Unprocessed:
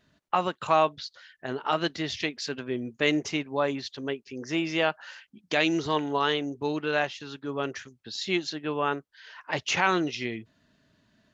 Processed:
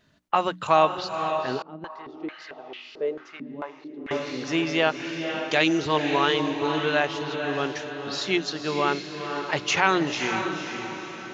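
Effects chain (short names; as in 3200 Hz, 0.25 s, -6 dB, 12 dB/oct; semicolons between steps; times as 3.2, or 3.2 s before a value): notches 60/120/180/240/300 Hz; diffused feedback echo 0.516 s, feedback 48%, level -6.5 dB; 1.62–4.11 stepped band-pass 4.5 Hz 230–2900 Hz; gain +3 dB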